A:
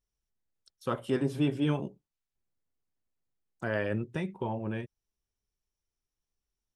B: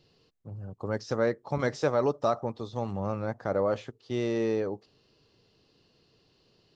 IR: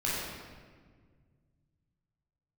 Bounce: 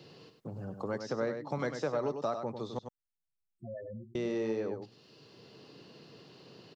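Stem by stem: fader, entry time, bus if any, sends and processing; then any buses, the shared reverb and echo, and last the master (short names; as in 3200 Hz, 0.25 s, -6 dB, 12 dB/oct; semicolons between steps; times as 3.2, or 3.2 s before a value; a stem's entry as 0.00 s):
-0.5 dB, 0.00 s, no send, echo send -22.5 dB, vocal rider 0.5 s; loudest bins only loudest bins 4; auto duck -13 dB, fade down 0.60 s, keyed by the second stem
+0.5 dB, 0.00 s, muted 2.79–4.15, no send, echo send -8.5 dB, HPF 120 Hz 24 dB/oct; three-band squash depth 40%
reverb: off
echo: echo 98 ms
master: compressor 1.5:1, threshold -41 dBFS, peak gain reduction 7.5 dB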